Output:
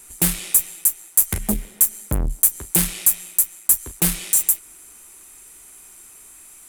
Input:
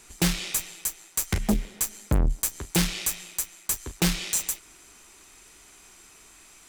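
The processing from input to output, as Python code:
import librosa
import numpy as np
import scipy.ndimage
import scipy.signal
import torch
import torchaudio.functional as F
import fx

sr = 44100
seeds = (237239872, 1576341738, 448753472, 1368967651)

y = fx.high_shelf_res(x, sr, hz=7500.0, db=12.0, q=1.5)
y = fx.quant_float(y, sr, bits=6)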